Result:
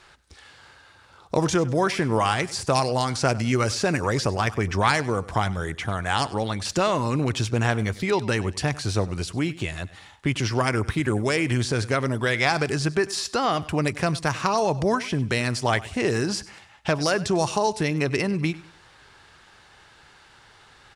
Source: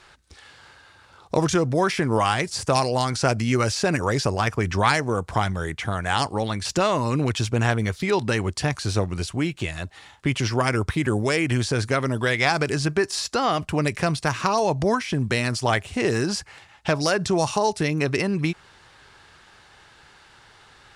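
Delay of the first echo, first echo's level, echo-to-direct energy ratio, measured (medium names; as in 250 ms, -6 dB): 98 ms, -18.5 dB, -18.0 dB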